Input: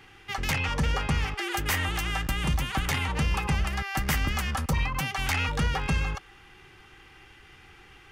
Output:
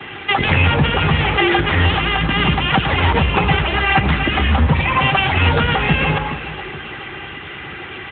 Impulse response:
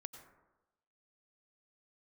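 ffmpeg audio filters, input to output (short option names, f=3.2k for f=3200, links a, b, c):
-filter_complex "[0:a]acrossover=split=85|370|750|2700[a][b][c][d][e];[a]acompressor=threshold=-30dB:ratio=4[f];[b]acompressor=threshold=-43dB:ratio=4[g];[c]acompressor=threshold=-43dB:ratio=4[h];[d]acompressor=threshold=-43dB:ratio=4[i];[e]acompressor=threshold=-41dB:ratio=4[j];[f][g][h][i][j]amix=inputs=5:normalize=0,asettb=1/sr,asplit=3[k][l][m];[k]atrim=end=2.744[n];[l]atrim=start=2.74:end=5.06,asetpts=PTS-STARTPTS,afade=t=in:d=0.004:c=qsin,afade=t=out:st=2.316:d=0.004:c=qsin,aphaser=in_gain=1:out_gain=1:delay=3.2:decay=0.43:speed=1.6:type=sinusoidal[o];[m]atrim=start=5.056[p];[n][o]acrossfade=d=0.004:c1=hsin:c2=qsin[q];[q][p]acrossfade=d=0.004:c1=qsin:c2=hsin,aecho=1:1:420|840|1260|1680:0.178|0.0836|0.0393|0.0185[r];[1:a]atrim=start_sample=2205,afade=t=out:st=0.27:d=0.01,atrim=end_sample=12348,asetrate=48510,aresample=44100[s];[r][s]afir=irnorm=-1:irlink=0,alimiter=level_in=29.5dB:limit=-1dB:release=50:level=0:latency=1" -ar 8000 -c:a libopencore_amrnb -b:a 10200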